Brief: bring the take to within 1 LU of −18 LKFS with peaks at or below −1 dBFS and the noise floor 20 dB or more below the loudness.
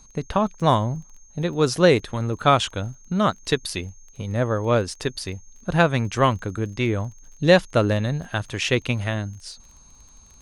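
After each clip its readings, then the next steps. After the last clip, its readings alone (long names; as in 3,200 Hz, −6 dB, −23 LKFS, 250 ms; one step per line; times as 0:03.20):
crackle rate 21 per second; interfering tone 6,400 Hz; level of the tone −51 dBFS; integrated loudness −22.5 LKFS; sample peak −2.5 dBFS; target loudness −18.0 LKFS
→ click removal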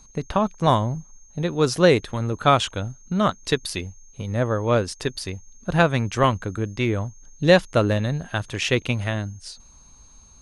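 crackle rate 0 per second; interfering tone 6,400 Hz; level of the tone −51 dBFS
→ notch filter 6,400 Hz, Q 30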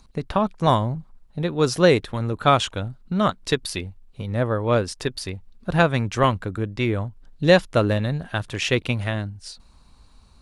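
interfering tone none found; integrated loudness −22.5 LKFS; sample peak −2.5 dBFS; target loudness −18.0 LKFS
→ level +4.5 dB
brickwall limiter −1 dBFS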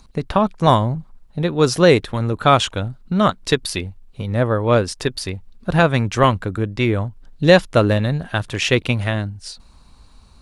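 integrated loudness −18.5 LKFS; sample peak −1.0 dBFS; background noise floor −48 dBFS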